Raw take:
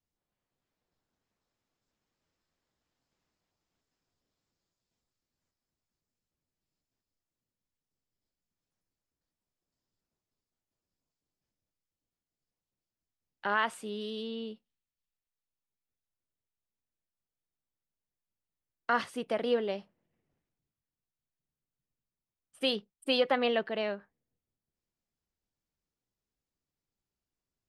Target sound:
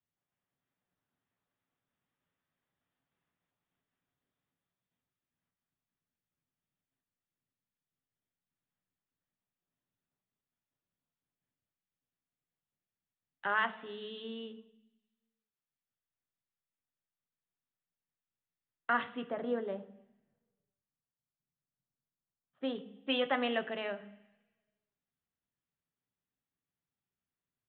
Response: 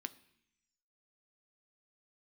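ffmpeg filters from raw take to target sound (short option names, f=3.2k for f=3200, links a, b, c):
-filter_complex "[0:a]aresample=8000,aresample=44100,asettb=1/sr,asplit=3[a][b][c];[a]atrim=end=19.244[d];[b]atrim=start=19.24:end=22.76,asetpts=PTS-STARTPTS,afade=t=in:d=0.004:c=qsin,afade=t=out:st=3.516:d=0.004:c=qsin,equalizer=f=2.8k:t=o:w=1:g=-14.5[e];[c]atrim=start=22.756[f];[d][e]acrossfade=d=0.004:c1=hsin:c2=qsin[g];[g][f]acrossfade=d=0.004:c1=qsin:c2=hsin[h];[1:a]atrim=start_sample=2205,asetrate=33516,aresample=44100[i];[h][i]afir=irnorm=-1:irlink=0,volume=-1dB"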